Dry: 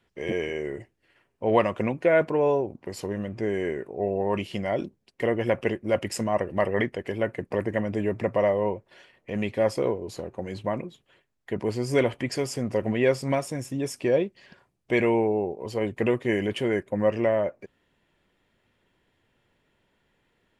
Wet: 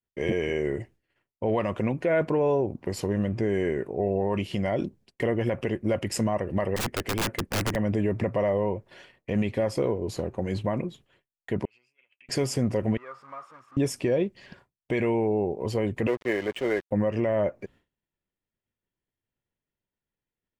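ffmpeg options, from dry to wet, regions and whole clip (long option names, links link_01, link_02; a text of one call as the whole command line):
ffmpeg -i in.wav -filter_complex "[0:a]asettb=1/sr,asplit=3[link_01][link_02][link_03];[link_01]atrim=end=6.764[link_04];[link_02]atrim=start=6.76:end=7.76,asetpts=PTS-STARTPTS,afade=type=in:duration=0.004:curve=qsin,afade=type=out:start_time=0.996:duration=0.004:curve=qsin,equalizer=frequency=130:width_type=o:width=0.57:gain=-6.5,aeval=exprs='(mod(16.8*val(0)+1,2)-1)/16.8':channel_layout=same[link_05];[link_03]atrim=start=7.756[link_06];[link_04][link_05]acrossfade=duration=0.004:curve1=hsin:curve2=qsin[link_07];[link_07][link_06]acrossfade=duration=0.004:curve1=qsin:curve2=hsin,asettb=1/sr,asplit=3[link_08][link_09][link_10];[link_08]atrim=end=11.654[link_11];[link_09]atrim=start=11.65:end=12.29,asetpts=PTS-STARTPTS,afade=type=in:duration=0.004:curve=qsin,afade=type=out:start_time=0.636:duration=0.004:curve=qsin,acompressor=threshold=-29dB:ratio=10:attack=3.2:release=140:knee=1:detection=peak,bandpass=frequency=2600:width_type=q:width=18[link_12];[link_10]atrim=start=12.286[link_13];[link_11][link_12]acrossfade=duration=0.004:curve1=hsin:curve2=qsin[link_14];[link_14][link_13]acrossfade=duration=0.004:curve1=qsin:curve2=hsin,asettb=1/sr,asplit=3[link_15][link_16][link_17];[link_15]atrim=end=12.974[link_18];[link_16]atrim=start=12.97:end=13.77,asetpts=PTS-STARTPTS,afade=type=in:duration=0.004:curve=qsin,afade=type=out:start_time=0.796:duration=0.004:curve=qsin,aeval=exprs='val(0)+0.5*0.0376*sgn(val(0))':channel_layout=same,bandpass=frequency=1200:width_type=q:width=13[link_19];[link_17]atrim=start=13.766[link_20];[link_18][link_19]acrossfade=duration=0.004:curve1=hsin:curve2=qsin[link_21];[link_21][link_20]acrossfade=duration=0.004:curve1=qsin:curve2=hsin,asettb=1/sr,asplit=3[link_22][link_23][link_24];[link_22]atrim=end=16.074[link_25];[link_23]atrim=start=16.07:end=16.91,asetpts=PTS-STARTPTS,afade=type=in:duration=0.004:curve=qsin,afade=type=out:start_time=0.836:duration=0.004:curve=qsin,acrossover=split=350 3300:gain=0.141 1 0.0891[link_26][link_27][link_28];[link_26][link_27][link_28]amix=inputs=3:normalize=0,aeval=exprs='sgn(val(0))*max(abs(val(0))-0.00708,0)':channel_layout=same[link_29];[link_24]atrim=start=16.906[link_30];[link_25][link_29]acrossfade=duration=0.004:curve1=hsin:curve2=qsin[link_31];[link_31][link_30]acrossfade=duration=0.004:curve1=qsin:curve2=hsin,agate=range=-33dB:threshold=-53dB:ratio=3:detection=peak,lowshelf=frequency=230:gain=7,alimiter=limit=-18dB:level=0:latency=1:release=133,volume=2.5dB" out.wav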